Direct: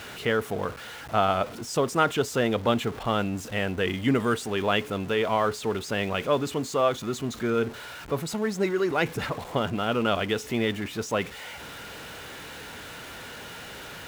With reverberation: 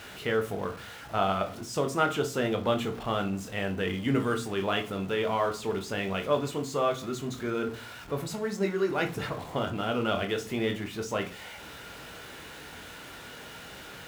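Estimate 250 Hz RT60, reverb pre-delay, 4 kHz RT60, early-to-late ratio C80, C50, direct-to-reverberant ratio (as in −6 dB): 0.70 s, 20 ms, 0.30 s, 20.0 dB, 13.5 dB, 5.0 dB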